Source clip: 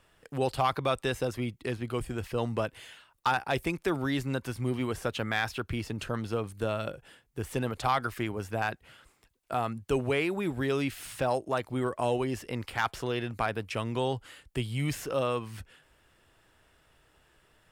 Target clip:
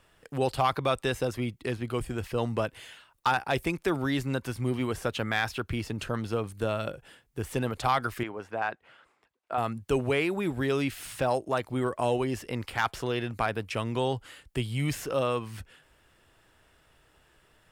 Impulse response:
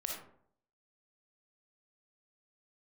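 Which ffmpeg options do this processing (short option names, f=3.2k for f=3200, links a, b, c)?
-filter_complex "[0:a]asettb=1/sr,asplit=3[a][b][c];[a]atrim=end=8.234[d];[b]atrim=start=8.23:end=9.58,asetpts=PTS-STARTPTS,afade=t=in:d=0.004:c=qsin,afade=t=out:st=1.346:d=0.004:c=qsin,bandpass=f=940:t=q:w=0.57:csg=0[e];[c]atrim=start=9.576[f];[d][e]acrossfade=d=0.004:c1=hsin:c2=qsin[g];[g][f]acrossfade=d=0.004:c1=qsin:c2=hsin,volume=1.5dB"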